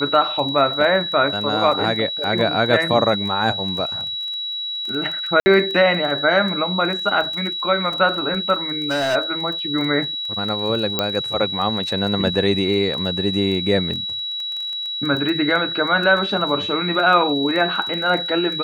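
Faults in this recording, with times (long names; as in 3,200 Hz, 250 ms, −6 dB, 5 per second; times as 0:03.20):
surface crackle 16 per second −26 dBFS
whistle 3,900 Hz −24 dBFS
0:05.40–0:05.46: drop-out 60 ms
0:08.70–0:09.16: clipping −16.5 dBFS
0:10.99: click −4 dBFS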